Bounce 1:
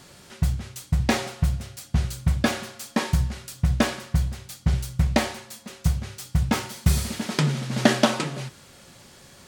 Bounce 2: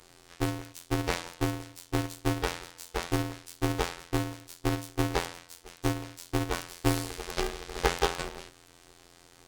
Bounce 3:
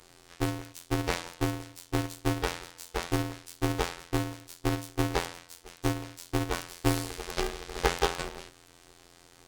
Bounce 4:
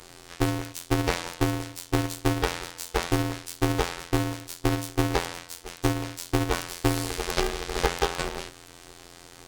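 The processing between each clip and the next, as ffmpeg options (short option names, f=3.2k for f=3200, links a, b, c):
-af "afftfilt=real='hypot(re,im)*cos(PI*b)':imag='0':win_size=2048:overlap=0.75,aeval=exprs='val(0)*sgn(sin(2*PI*200*n/s))':c=same,volume=-4dB"
-af anull
-af "acompressor=threshold=-28dB:ratio=6,volume=8.5dB"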